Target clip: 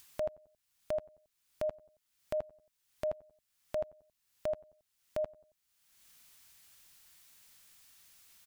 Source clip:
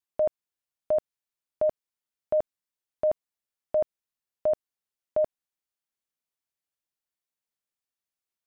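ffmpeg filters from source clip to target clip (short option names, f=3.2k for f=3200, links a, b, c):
-filter_complex "[0:a]equalizer=f=450:t=o:w=2.5:g=-11.5,acompressor=mode=upward:threshold=-37dB:ratio=2.5,asplit=2[a][b];[b]adelay=91,lowpass=f=1.1k:p=1,volume=-21.5dB,asplit=2[c][d];[d]adelay=91,lowpass=f=1.1k:p=1,volume=0.47,asplit=2[e][f];[f]adelay=91,lowpass=f=1.1k:p=1,volume=0.47[g];[a][c][e][g]amix=inputs=4:normalize=0"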